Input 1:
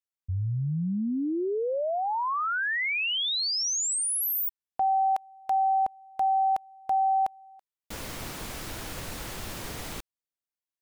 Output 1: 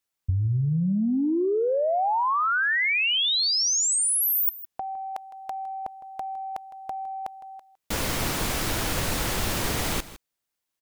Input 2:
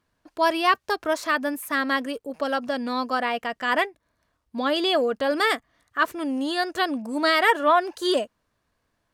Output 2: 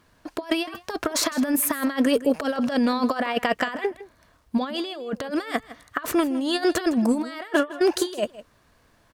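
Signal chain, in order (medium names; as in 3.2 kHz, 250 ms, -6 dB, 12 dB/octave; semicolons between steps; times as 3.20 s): compressor with a negative ratio -30 dBFS, ratio -0.5; on a send: delay 159 ms -16.5 dB; on the sum: trim +6.5 dB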